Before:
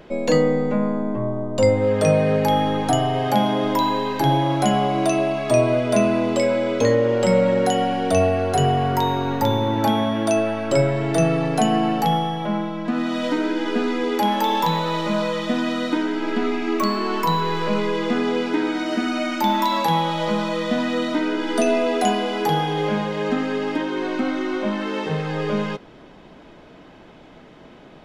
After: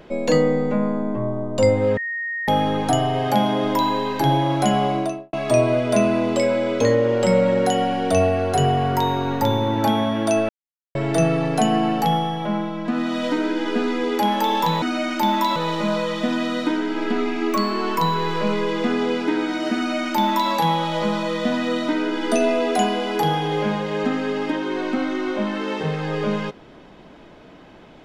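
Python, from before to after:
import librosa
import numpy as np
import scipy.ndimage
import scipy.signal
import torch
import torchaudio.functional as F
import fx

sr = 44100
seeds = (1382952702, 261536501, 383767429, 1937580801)

y = fx.studio_fade_out(x, sr, start_s=4.88, length_s=0.45)
y = fx.edit(y, sr, fx.bleep(start_s=1.97, length_s=0.51, hz=1860.0, db=-24.0),
    fx.silence(start_s=10.49, length_s=0.46),
    fx.duplicate(start_s=19.03, length_s=0.74, to_s=14.82), tone=tone)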